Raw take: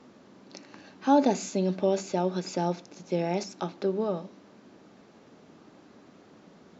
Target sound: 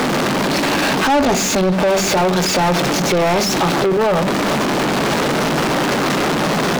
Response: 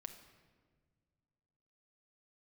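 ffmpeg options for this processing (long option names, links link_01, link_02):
-filter_complex "[0:a]aeval=exprs='val(0)+0.5*0.0631*sgn(val(0))':channel_layout=same,equalizer=frequency=140:width=4.6:gain=13,asplit=2[link_01][link_02];[link_02]highpass=frequency=720:poles=1,volume=29dB,asoftclip=type=tanh:threshold=-9dB[link_03];[link_01][link_03]amix=inputs=2:normalize=0,lowpass=frequency=3600:poles=1,volume=-6dB,volume=1dB"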